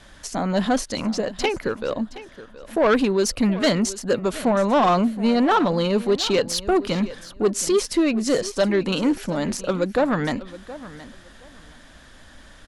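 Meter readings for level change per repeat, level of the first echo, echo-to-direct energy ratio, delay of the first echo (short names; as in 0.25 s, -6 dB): -13.5 dB, -16.5 dB, -16.5 dB, 0.721 s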